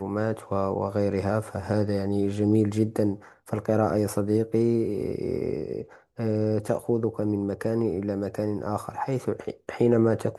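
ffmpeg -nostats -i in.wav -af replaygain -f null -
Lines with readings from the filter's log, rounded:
track_gain = +6.4 dB
track_peak = 0.235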